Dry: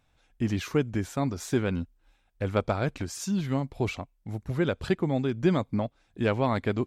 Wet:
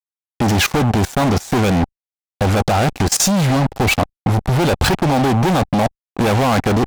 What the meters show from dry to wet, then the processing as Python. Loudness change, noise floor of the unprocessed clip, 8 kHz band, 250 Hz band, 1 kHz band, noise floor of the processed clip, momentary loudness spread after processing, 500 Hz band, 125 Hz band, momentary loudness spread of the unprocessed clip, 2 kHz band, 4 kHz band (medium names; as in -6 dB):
+12.5 dB, -69 dBFS, +20.5 dB, +11.0 dB, +17.0 dB, under -85 dBFS, 5 LU, +10.0 dB, +13.0 dB, 9 LU, +14.5 dB, +18.5 dB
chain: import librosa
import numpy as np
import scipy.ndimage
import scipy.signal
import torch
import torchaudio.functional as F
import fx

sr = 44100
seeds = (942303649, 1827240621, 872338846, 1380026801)

y = fx.fuzz(x, sr, gain_db=41.0, gate_db=-42.0)
y = fx.rider(y, sr, range_db=10, speed_s=2.0)
y = fx.peak_eq(y, sr, hz=790.0, db=9.0, octaves=0.32)
y = fx.level_steps(y, sr, step_db=20)
y = y * librosa.db_to_amplitude(5.5)